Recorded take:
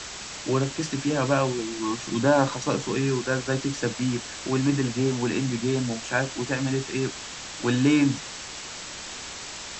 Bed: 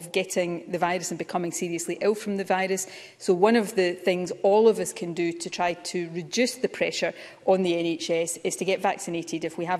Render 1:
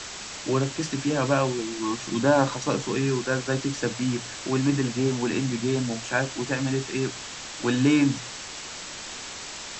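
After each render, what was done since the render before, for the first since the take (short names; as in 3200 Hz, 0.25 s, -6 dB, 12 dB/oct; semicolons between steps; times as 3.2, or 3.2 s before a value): de-hum 60 Hz, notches 3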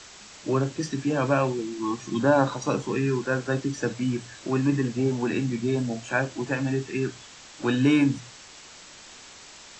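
noise print and reduce 9 dB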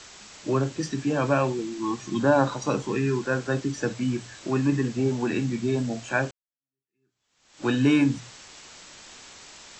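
6.31–7.66 fade in exponential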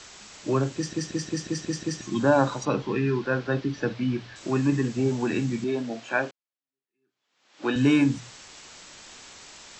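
0.75 stutter in place 0.18 s, 7 plays; 2.65–4.36 LPF 4600 Hz 24 dB/oct; 5.64–7.76 BPF 250–4600 Hz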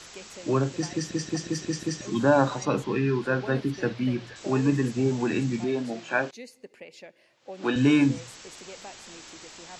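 add bed -20 dB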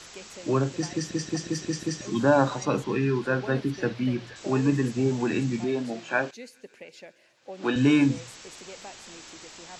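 thin delay 0.137 s, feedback 84%, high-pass 3600 Hz, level -20.5 dB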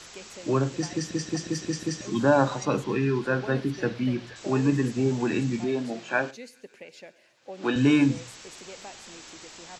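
echo 99 ms -21.5 dB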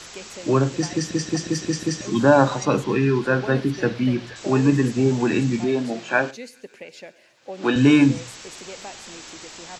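gain +5.5 dB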